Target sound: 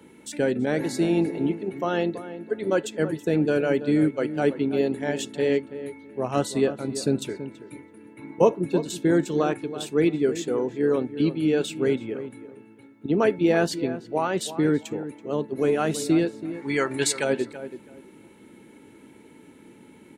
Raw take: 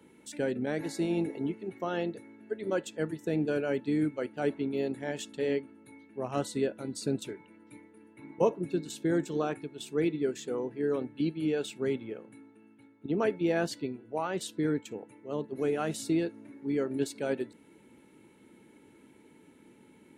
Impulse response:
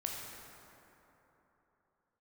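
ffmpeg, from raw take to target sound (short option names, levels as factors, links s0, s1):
-filter_complex "[0:a]asplit=3[s0][s1][s2];[s0]afade=t=out:st=16.53:d=0.02[s3];[s1]equalizer=f=250:t=o:w=1:g=-6,equalizer=f=500:t=o:w=1:g=-3,equalizer=f=1000:t=o:w=1:g=9,equalizer=f=2000:t=o:w=1:g=9,equalizer=f=4000:t=o:w=1:g=5,equalizer=f=8000:t=o:w=1:g=11,afade=t=in:st=16.53:d=0.02,afade=t=out:st=17.23:d=0.02[s4];[s2]afade=t=in:st=17.23:d=0.02[s5];[s3][s4][s5]amix=inputs=3:normalize=0,asplit=2[s6][s7];[s7]adelay=330,lowpass=f=1600:p=1,volume=0.251,asplit=2[s8][s9];[s9]adelay=330,lowpass=f=1600:p=1,volume=0.22,asplit=2[s10][s11];[s11]adelay=330,lowpass=f=1600:p=1,volume=0.22[s12];[s8][s10][s12]amix=inputs=3:normalize=0[s13];[s6][s13]amix=inputs=2:normalize=0,volume=2.37"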